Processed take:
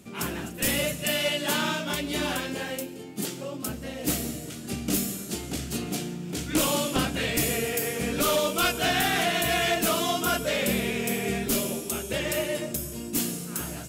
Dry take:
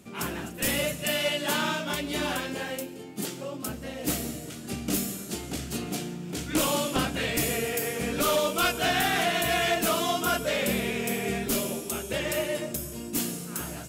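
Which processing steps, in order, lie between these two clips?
parametric band 980 Hz −2.5 dB 2.2 octaves
level +2 dB

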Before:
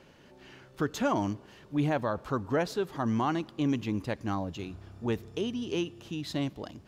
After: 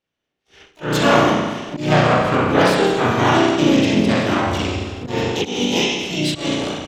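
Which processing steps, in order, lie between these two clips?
spring reverb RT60 1.3 s, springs 33 ms, chirp 30 ms, DRR −6 dB
noise gate −43 dBFS, range −39 dB
volume swells 173 ms
parametric band 3,300 Hz +9.5 dB 1.5 octaves
pitch-shifted copies added −4 semitones −7 dB, +3 semitones −5 dB, +12 semitones −7 dB
level +5 dB

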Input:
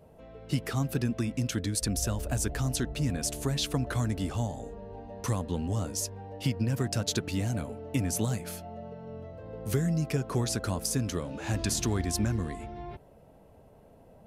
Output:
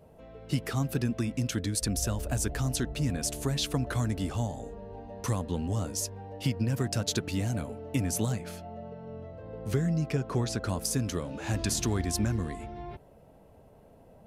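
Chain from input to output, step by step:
0:08.32–0:10.69: parametric band 13,000 Hz −10.5 dB 1.3 octaves

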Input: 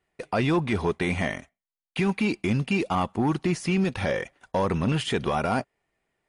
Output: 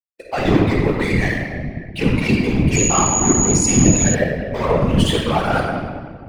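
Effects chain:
spectral dynamics exaggerated over time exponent 2
leveller curve on the samples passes 3
rectangular room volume 2,600 cubic metres, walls mixed, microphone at 3.5 metres
0:02.75–0:04.13: steady tone 6,800 Hz −16 dBFS
random phases in short frames
level −1 dB

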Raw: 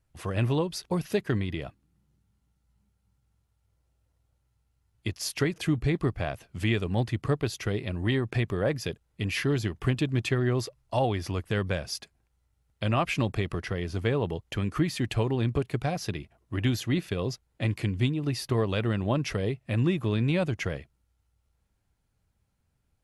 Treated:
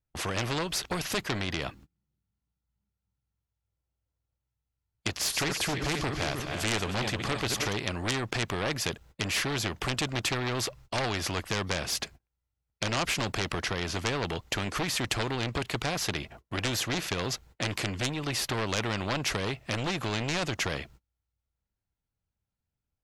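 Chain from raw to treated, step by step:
0:05.16–0:07.73: feedback delay that plays each chunk backwards 155 ms, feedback 62%, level −10 dB
noise gate −56 dBFS, range −30 dB
parametric band 10,000 Hz −11 dB 0.44 octaves
sine wavefolder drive 8 dB, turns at −12.5 dBFS
every bin compressed towards the loudest bin 2 to 1

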